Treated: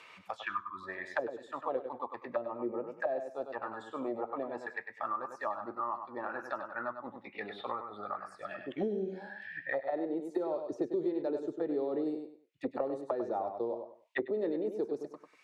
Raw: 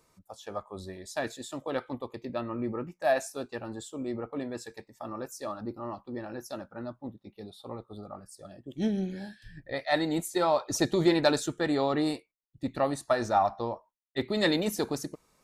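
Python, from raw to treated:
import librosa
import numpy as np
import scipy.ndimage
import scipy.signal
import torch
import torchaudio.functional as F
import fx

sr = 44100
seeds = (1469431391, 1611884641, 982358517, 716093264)

y = fx.auto_wah(x, sr, base_hz=410.0, top_hz=2900.0, q=3.3, full_db=-27.0, direction='down')
y = fx.spec_repair(y, sr, seeds[0], start_s=0.46, length_s=0.35, low_hz=380.0, high_hz=930.0, source='before')
y = fx.bass_treble(y, sr, bass_db=-7, treble_db=-7, at=(9.81, 10.25))
y = fx.echo_feedback(y, sr, ms=98, feedback_pct=18, wet_db=-8.5)
y = fx.band_squash(y, sr, depth_pct=100)
y = y * librosa.db_to_amplitude(1.5)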